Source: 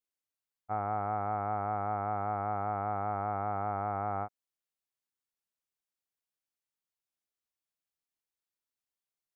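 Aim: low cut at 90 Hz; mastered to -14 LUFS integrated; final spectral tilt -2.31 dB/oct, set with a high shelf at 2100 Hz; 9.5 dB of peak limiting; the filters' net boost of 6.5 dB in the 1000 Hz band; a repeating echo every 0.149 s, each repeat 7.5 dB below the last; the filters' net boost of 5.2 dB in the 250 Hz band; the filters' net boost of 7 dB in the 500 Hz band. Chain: HPF 90 Hz; bell 250 Hz +5 dB; bell 500 Hz +6 dB; bell 1000 Hz +4.5 dB; high shelf 2100 Hz +8 dB; limiter -24.5 dBFS; feedback echo 0.149 s, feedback 42%, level -7.5 dB; gain +20.5 dB

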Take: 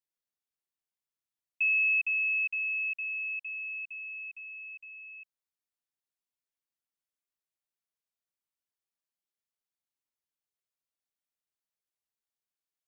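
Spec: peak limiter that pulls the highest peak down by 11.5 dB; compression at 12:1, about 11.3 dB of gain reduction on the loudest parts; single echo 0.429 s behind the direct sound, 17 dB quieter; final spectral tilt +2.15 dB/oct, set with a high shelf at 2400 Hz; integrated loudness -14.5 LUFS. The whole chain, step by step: high shelf 2400 Hz +7 dB; compressor 12:1, threshold -32 dBFS; limiter -34.5 dBFS; echo 0.429 s -17 dB; gain +21 dB

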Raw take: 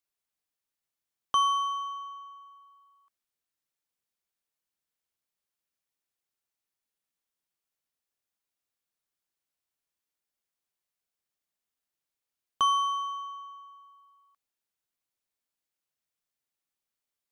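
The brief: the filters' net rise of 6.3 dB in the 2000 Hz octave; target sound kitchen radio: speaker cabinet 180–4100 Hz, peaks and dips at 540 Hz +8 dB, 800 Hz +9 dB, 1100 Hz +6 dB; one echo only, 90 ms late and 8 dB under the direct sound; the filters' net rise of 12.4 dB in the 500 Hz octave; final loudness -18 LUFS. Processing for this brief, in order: speaker cabinet 180–4100 Hz, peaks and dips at 540 Hz +8 dB, 800 Hz +9 dB, 1100 Hz +6 dB; bell 500 Hz +7.5 dB; bell 2000 Hz +7 dB; echo 90 ms -8 dB

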